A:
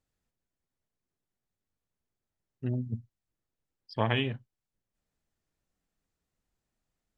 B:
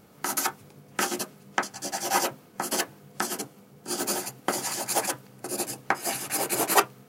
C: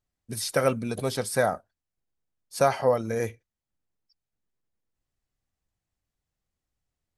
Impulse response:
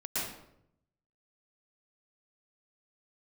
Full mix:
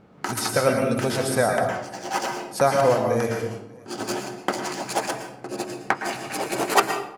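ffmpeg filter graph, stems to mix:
-filter_complex "[0:a]volume=-14.5dB[a];[1:a]adynamicsmooth=sensitivity=4:basefreq=2.8k,volume=1.5dB,asplit=2[b][c];[c]volume=-11dB[d];[2:a]volume=-0.5dB,asplit=4[e][f][g][h];[f]volume=-4dB[i];[g]volume=-14.5dB[j];[h]apad=whole_len=312386[k];[b][k]sidechaincompress=threshold=-32dB:ratio=8:attack=27:release=1180[l];[3:a]atrim=start_sample=2205[m];[d][i]amix=inputs=2:normalize=0[n];[n][m]afir=irnorm=-1:irlink=0[o];[j]aecho=0:1:295|590|885|1180|1475|1770:1|0.4|0.16|0.064|0.0256|0.0102[p];[a][l][e][o][p]amix=inputs=5:normalize=0"

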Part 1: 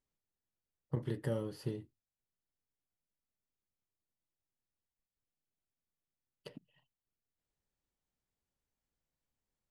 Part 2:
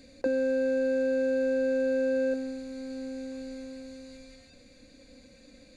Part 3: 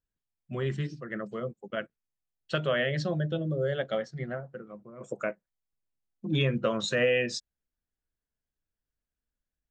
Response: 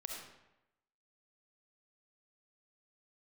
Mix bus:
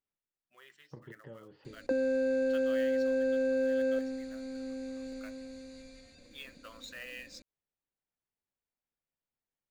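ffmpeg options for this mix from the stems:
-filter_complex "[0:a]lowpass=f=3.2k:w=0.5412,lowpass=f=3.2k:w=1.3066,lowshelf=f=140:g=-9.5,acompressor=threshold=-40dB:ratio=6,volume=-4dB[a];[1:a]adelay=1650,volume=-2.5dB[b];[2:a]highpass=1.1k,acrusher=bits=3:mode=log:mix=0:aa=0.000001,volume=-14.5dB,asplit=2[c][d];[d]apad=whole_len=428113[e];[a][e]sidechaincompress=threshold=-58dB:ratio=8:attack=9.6:release=141[f];[f][b][c]amix=inputs=3:normalize=0"

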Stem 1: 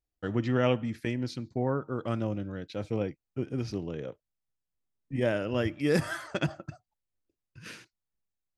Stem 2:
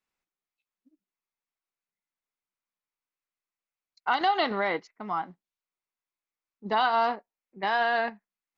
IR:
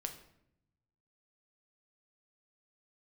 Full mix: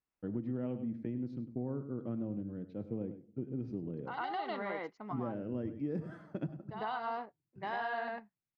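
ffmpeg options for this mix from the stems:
-filter_complex "[0:a]bandpass=f=220:t=q:w=1.2:csg=0,volume=-3.5dB,asplit=4[a][b][c][d];[b]volume=-8.5dB[e];[c]volume=-11.5dB[f];[1:a]highshelf=f=3.1k:g=-11.5,volume=-6.5dB,asplit=2[g][h];[h]volume=-4dB[i];[d]apad=whole_len=378120[j];[g][j]sidechaincompress=threshold=-48dB:ratio=5:attack=8.1:release=1170[k];[2:a]atrim=start_sample=2205[l];[e][l]afir=irnorm=-1:irlink=0[m];[f][i]amix=inputs=2:normalize=0,aecho=0:1:101:1[n];[a][k][m][n]amix=inputs=4:normalize=0,acompressor=threshold=-33dB:ratio=6"

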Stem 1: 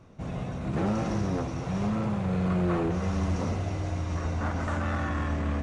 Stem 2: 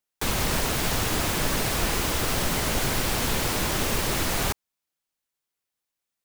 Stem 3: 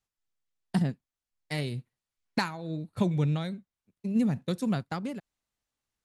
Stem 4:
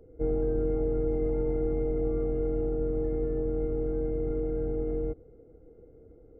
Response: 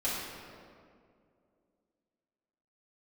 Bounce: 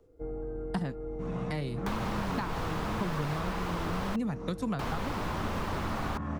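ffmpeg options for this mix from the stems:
-filter_complex "[0:a]equalizer=f=190:w=1.2:g=10.5,adelay=1000,volume=-6dB[a];[1:a]adelay=1650,volume=-1dB,asplit=3[b][c][d];[b]atrim=end=4.16,asetpts=PTS-STARTPTS,afade=t=out:st=4.156:d=0.004:c=hsin[e];[c]atrim=start=4.16:end=4.79,asetpts=PTS-STARTPTS,volume=0[f];[d]atrim=start=4.79,asetpts=PTS-STARTPTS,afade=t=in:d=0.004:c=hsin[g];[e][f][g]concat=n=3:v=0:a=1[h];[2:a]volume=2dB,asplit=2[i][j];[3:a]volume=-9.5dB[k];[j]apad=whole_len=292278[l];[a][l]sidechaincompress=threshold=-39dB:ratio=6:attack=16:release=423[m];[m][h][i][k]amix=inputs=4:normalize=0,acrossover=split=5000[n][o];[o]acompressor=threshold=-43dB:ratio=4:attack=1:release=60[p];[n][p]amix=inputs=2:normalize=0,equalizer=f=1.1k:t=o:w=1.2:g=9.5,acrossover=split=300|1000[q][r][s];[q]acompressor=threshold=-33dB:ratio=4[t];[r]acompressor=threshold=-39dB:ratio=4[u];[s]acompressor=threshold=-43dB:ratio=4[v];[t][u][v]amix=inputs=3:normalize=0"

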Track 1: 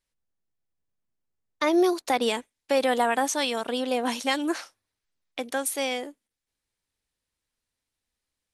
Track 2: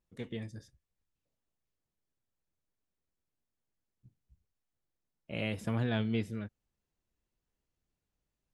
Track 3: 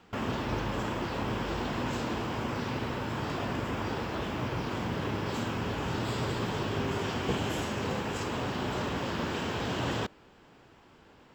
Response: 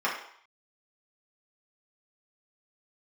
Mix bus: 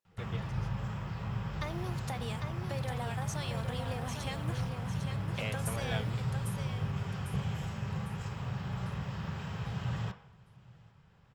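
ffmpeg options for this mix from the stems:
-filter_complex "[0:a]acompressor=threshold=-27dB:ratio=6,acrusher=bits=8:mix=0:aa=0.000001,volume=-9.5dB,asplit=3[a][b][c];[b]volume=-6dB[d];[1:a]highpass=f=340:w=0.5412,highpass=f=340:w=1.3066,volume=-0.5dB[e];[2:a]adelay=50,volume=-13.5dB,asplit=3[f][g][h];[g]volume=-13.5dB[i];[h]volume=-24dB[j];[c]apad=whole_len=376373[k];[e][k]sidechaingate=range=-33dB:threshold=-51dB:ratio=16:detection=peak[l];[3:a]atrim=start_sample=2205[m];[i][m]afir=irnorm=-1:irlink=0[n];[d][j]amix=inputs=2:normalize=0,aecho=0:1:801|1602|2403|3204|4005|4806:1|0.43|0.185|0.0795|0.0342|0.0147[o];[a][l][f][n][o]amix=inputs=5:normalize=0,lowshelf=f=200:t=q:w=3:g=11.5"

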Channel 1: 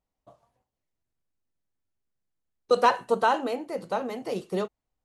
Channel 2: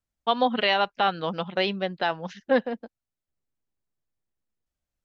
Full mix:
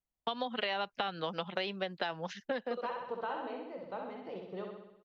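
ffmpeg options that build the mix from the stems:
-filter_complex "[0:a]lowpass=f=3.5k:w=0.5412,lowpass=f=3.5k:w=1.3066,alimiter=limit=-15dB:level=0:latency=1:release=166,volume=-13dB,asplit=2[a][b];[b]volume=-4dB[c];[1:a]agate=range=-12dB:threshold=-49dB:ratio=16:detection=peak,acompressor=threshold=-26dB:ratio=6,volume=-0.5dB[d];[c]aecho=0:1:64|128|192|256|320|384|448|512|576:1|0.59|0.348|0.205|0.121|0.0715|0.0422|0.0249|0.0147[e];[a][d][e]amix=inputs=3:normalize=0,acrossover=split=370|2100[f][g][h];[f]acompressor=threshold=-45dB:ratio=4[i];[g]acompressor=threshold=-34dB:ratio=4[j];[h]acompressor=threshold=-37dB:ratio=4[k];[i][j][k]amix=inputs=3:normalize=0"

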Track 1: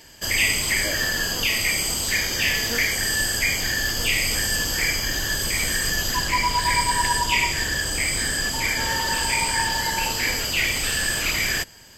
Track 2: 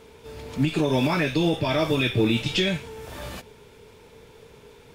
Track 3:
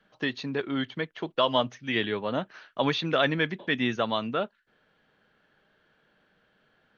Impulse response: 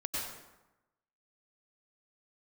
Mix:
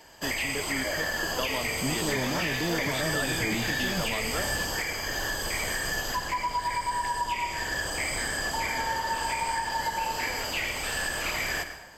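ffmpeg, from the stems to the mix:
-filter_complex "[0:a]equalizer=f=810:w=0.71:g=12,alimiter=limit=-10.5dB:level=0:latency=1:release=422,volume=-10dB,asplit=2[a][b];[b]volume=-10.5dB[c];[1:a]alimiter=limit=-18dB:level=0:latency=1,asoftclip=type=tanh:threshold=-25.5dB,adelay=1250,volume=0dB[d];[2:a]volume=-6dB[e];[d][e]amix=inputs=2:normalize=0,alimiter=limit=-21dB:level=0:latency=1:release=91,volume=0dB[f];[3:a]atrim=start_sample=2205[g];[c][g]afir=irnorm=-1:irlink=0[h];[a][f][h]amix=inputs=3:normalize=0,acrossover=split=400[i][j];[j]acompressor=threshold=-25dB:ratio=6[k];[i][k]amix=inputs=2:normalize=0"

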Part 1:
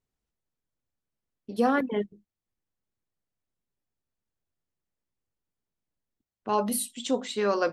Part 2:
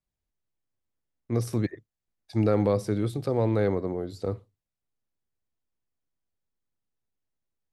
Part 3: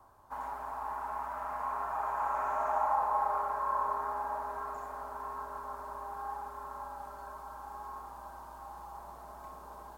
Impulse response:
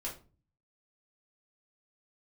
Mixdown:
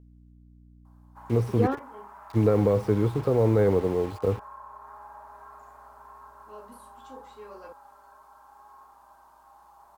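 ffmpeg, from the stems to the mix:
-filter_complex "[0:a]aeval=exprs='val(0)+0.00447*(sin(2*PI*60*n/s)+sin(2*PI*2*60*n/s)/2+sin(2*PI*3*60*n/s)/3+sin(2*PI*4*60*n/s)/4+sin(2*PI*5*60*n/s)/5)':c=same,volume=-4.5dB,asplit=2[a][b];[b]volume=-19.5dB[c];[1:a]lowshelf=f=110:g=6,alimiter=limit=-15dB:level=0:latency=1,acrusher=bits=6:mix=0:aa=0.000001,volume=1dB,asplit=2[d][e];[2:a]equalizer=f=470:t=o:w=0.39:g=-8.5,acompressor=threshold=-34dB:ratio=6,lowshelf=f=320:g=-9.5,adelay=850,volume=-6.5dB[f];[e]apad=whole_len=340672[g];[a][g]sidechaingate=range=-33dB:threshold=-31dB:ratio=16:detection=peak[h];[3:a]atrim=start_sample=2205[i];[c][i]afir=irnorm=-1:irlink=0[j];[h][d][f][j]amix=inputs=4:normalize=0,acrossover=split=2800[k][l];[l]acompressor=threshold=-53dB:ratio=4:attack=1:release=60[m];[k][m]amix=inputs=2:normalize=0,equalizer=f=450:w=5.4:g=7.5"

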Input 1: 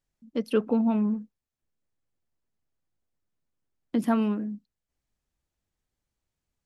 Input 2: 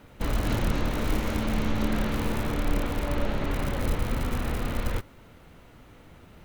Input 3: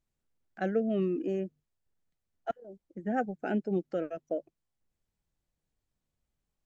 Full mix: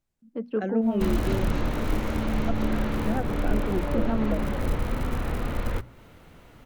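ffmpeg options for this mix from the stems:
-filter_complex "[0:a]lowpass=1.4k,volume=-3dB[a];[1:a]adynamicequalizer=threshold=0.00316:dfrequency=2300:dqfactor=0.7:tfrequency=2300:tqfactor=0.7:attack=5:release=100:ratio=0.375:range=2.5:mode=cutabove:tftype=highshelf,adelay=800,volume=1dB[b];[2:a]volume=1.5dB[c];[a][b][c]amix=inputs=3:normalize=0,bandreject=f=60:t=h:w=6,bandreject=f=120:t=h:w=6,bandreject=f=180:t=h:w=6,bandreject=f=240:t=h:w=6,acrossover=split=490[d][e];[e]acompressor=threshold=-31dB:ratio=6[f];[d][f]amix=inputs=2:normalize=0"

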